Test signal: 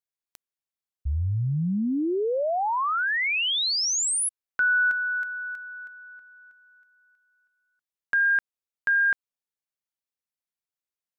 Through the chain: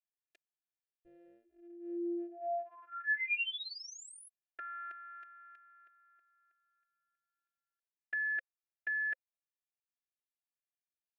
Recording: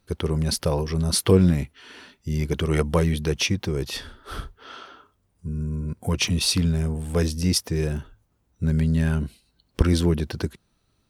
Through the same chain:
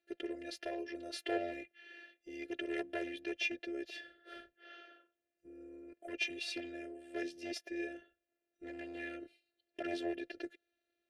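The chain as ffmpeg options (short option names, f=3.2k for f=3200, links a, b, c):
-filter_complex "[0:a]aeval=exprs='0.188*(abs(mod(val(0)/0.188+3,4)-2)-1)':c=same,afftfilt=real='hypot(re,im)*cos(PI*b)':imag='0':win_size=512:overlap=0.75,asplit=3[a][b][c];[a]bandpass=f=530:t=q:w=8,volume=0dB[d];[b]bandpass=f=1.84k:t=q:w=8,volume=-6dB[e];[c]bandpass=f=2.48k:t=q:w=8,volume=-9dB[f];[d][e][f]amix=inputs=3:normalize=0,volume=6dB"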